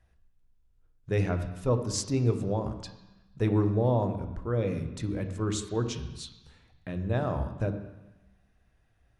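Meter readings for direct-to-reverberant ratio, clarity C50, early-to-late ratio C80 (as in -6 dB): 7.0 dB, 9.5 dB, 11.0 dB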